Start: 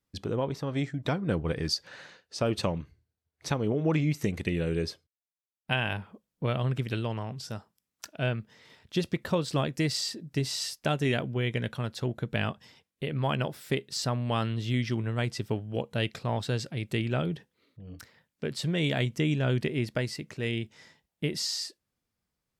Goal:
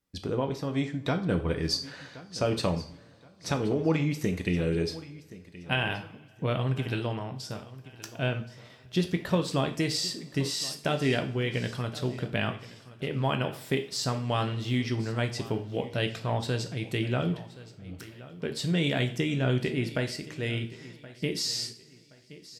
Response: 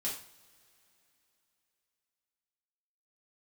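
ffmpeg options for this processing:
-filter_complex "[0:a]aecho=1:1:1073|2146|3219:0.126|0.0378|0.0113,asplit=2[s0][s1];[1:a]atrim=start_sample=2205[s2];[s1][s2]afir=irnorm=-1:irlink=0,volume=0.596[s3];[s0][s3]amix=inputs=2:normalize=0,volume=0.75"

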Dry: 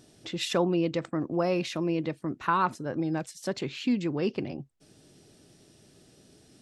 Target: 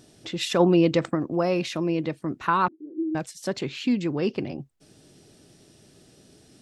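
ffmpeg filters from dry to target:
-filter_complex "[0:a]asplit=3[s0][s1][s2];[s0]afade=t=out:st=0.59:d=0.02[s3];[s1]acontrast=22,afade=t=in:st=0.59:d=0.02,afade=t=out:st=1.14:d=0.02[s4];[s2]afade=t=in:st=1.14:d=0.02[s5];[s3][s4][s5]amix=inputs=3:normalize=0,asettb=1/sr,asplit=3[s6][s7][s8];[s6]atrim=end=2.684[s9];[s7]atrim=start=2.68:end=3.15,asetpts=PTS-STARTPTS,afade=t=in:d=0.004:c=qsin,afade=t=out:st=0.466:d=0.004:c=qsin,asuperpass=centerf=330:order=4:qfactor=5.2[s10];[s8]atrim=start=3.146[s11];[s9][s10]acrossfade=d=0.004:c1=hsin:c2=qsin[s12];[s12][s11]acrossfade=d=0.004:c1=qsin:c2=hsin,volume=1.41"

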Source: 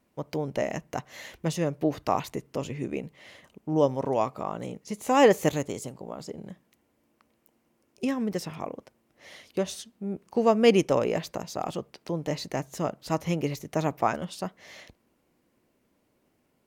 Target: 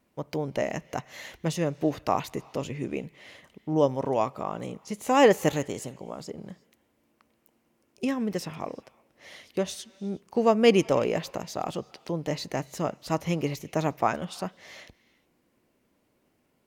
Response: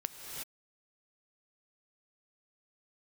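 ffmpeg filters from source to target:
-filter_complex "[0:a]asplit=2[s0][s1];[s1]aderivative[s2];[1:a]atrim=start_sample=2205,lowpass=2800[s3];[s2][s3]afir=irnorm=-1:irlink=0,volume=0.631[s4];[s0][s4]amix=inputs=2:normalize=0"

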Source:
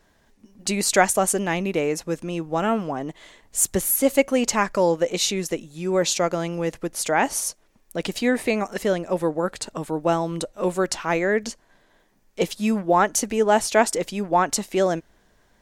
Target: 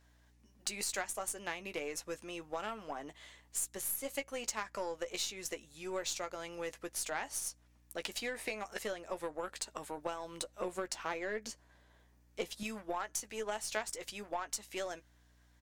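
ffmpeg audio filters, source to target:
-filter_complex "[0:a]asetnsamples=n=441:p=0,asendcmd='10.61 highpass f 380;12.63 highpass f 1400',highpass=f=1000:p=1,acompressor=threshold=0.0316:ratio=6,aeval=exprs='val(0)+0.00112*(sin(2*PI*60*n/s)+sin(2*PI*2*60*n/s)/2+sin(2*PI*3*60*n/s)/3+sin(2*PI*4*60*n/s)/4+sin(2*PI*5*60*n/s)/5)':c=same,aeval=exprs='0.168*(cos(1*acos(clip(val(0)/0.168,-1,1)))-cos(1*PI/2))+0.0119*(cos(2*acos(clip(val(0)/0.168,-1,1)))-cos(2*PI/2))+0.0106*(cos(3*acos(clip(val(0)/0.168,-1,1)))-cos(3*PI/2))+0.00473*(cos(7*acos(clip(val(0)/0.168,-1,1)))-cos(7*PI/2))+0.00473*(cos(8*acos(clip(val(0)/0.168,-1,1)))-cos(8*PI/2))':c=same,asplit=2[s0][s1];[s1]adelay=14,volume=0.316[s2];[s0][s2]amix=inputs=2:normalize=0,volume=0.708"

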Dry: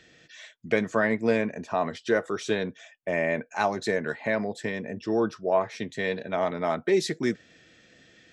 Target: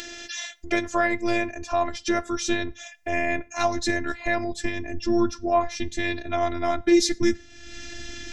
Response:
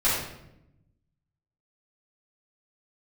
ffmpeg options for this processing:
-filter_complex "[0:a]acompressor=mode=upward:threshold=0.0316:ratio=2.5,equalizer=f=5900:t=o:w=0.69:g=8,asplit=2[s0][s1];[1:a]atrim=start_sample=2205,atrim=end_sample=6174[s2];[s1][s2]afir=irnorm=-1:irlink=0,volume=0.0178[s3];[s0][s3]amix=inputs=2:normalize=0,afftfilt=real='hypot(re,im)*cos(PI*b)':imag='0':win_size=512:overlap=0.75,asubboost=boost=9.5:cutoff=150,volume=2.11"

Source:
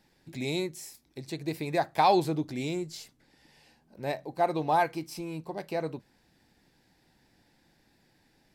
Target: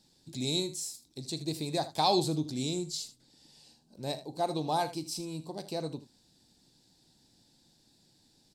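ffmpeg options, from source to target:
-af "equalizer=f=125:t=o:w=1:g=4,equalizer=f=250:t=o:w=1:g=4,equalizer=f=2000:t=o:w=1:g=-11,equalizer=f=4000:t=o:w=1:g=11,equalizer=f=8000:t=o:w=1:g=12,aecho=1:1:39|79:0.141|0.188,volume=0.562"

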